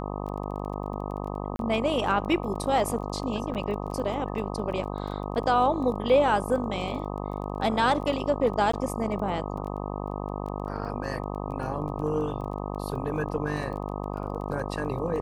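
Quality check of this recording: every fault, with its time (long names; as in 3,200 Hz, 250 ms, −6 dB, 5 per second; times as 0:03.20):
mains buzz 50 Hz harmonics 25 −33 dBFS
surface crackle 17 per second −36 dBFS
0:01.56–0:01.59: drop-out 32 ms
0:03.54–0:03.55: drop-out 8.4 ms
0:08.72–0:08.73: drop-out 14 ms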